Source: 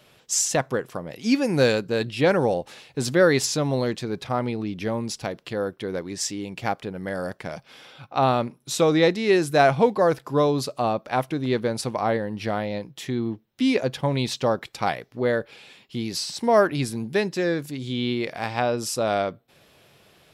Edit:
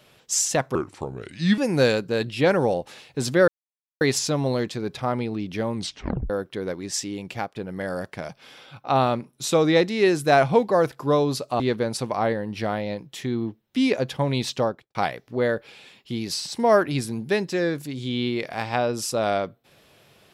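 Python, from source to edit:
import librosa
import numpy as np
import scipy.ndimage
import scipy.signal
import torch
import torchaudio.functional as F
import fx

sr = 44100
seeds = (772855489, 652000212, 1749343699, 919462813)

y = fx.studio_fade_out(x, sr, start_s=14.4, length_s=0.39)
y = fx.edit(y, sr, fx.speed_span(start_s=0.75, length_s=0.63, speed=0.76),
    fx.insert_silence(at_s=3.28, length_s=0.53),
    fx.tape_stop(start_s=5.02, length_s=0.55),
    fx.fade_out_to(start_s=6.57, length_s=0.26, floor_db=-11.5),
    fx.cut(start_s=10.87, length_s=0.57), tone=tone)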